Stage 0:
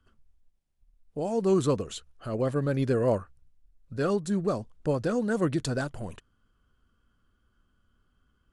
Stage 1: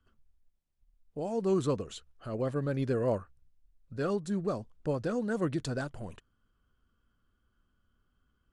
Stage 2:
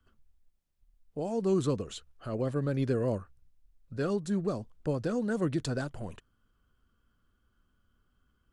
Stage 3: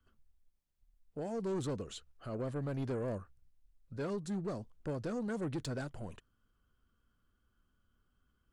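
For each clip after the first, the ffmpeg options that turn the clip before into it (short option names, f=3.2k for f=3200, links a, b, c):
-af "highshelf=f=9.8k:g=-7.5,volume=-4.5dB"
-filter_complex "[0:a]acrossover=split=410|3000[a][b][c];[b]acompressor=threshold=-36dB:ratio=6[d];[a][d][c]amix=inputs=3:normalize=0,volume=2dB"
-af "asoftclip=type=tanh:threshold=-27.5dB,volume=-4dB"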